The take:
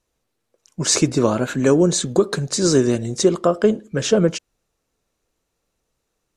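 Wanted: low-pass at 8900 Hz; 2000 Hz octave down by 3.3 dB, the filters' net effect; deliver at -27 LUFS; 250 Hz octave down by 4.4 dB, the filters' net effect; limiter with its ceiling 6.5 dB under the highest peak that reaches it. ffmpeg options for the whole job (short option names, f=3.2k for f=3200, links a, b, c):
-af "lowpass=8.9k,equalizer=f=250:t=o:g=-6.5,equalizer=f=2k:t=o:g=-4.5,volume=-4dB,alimiter=limit=-16dB:level=0:latency=1"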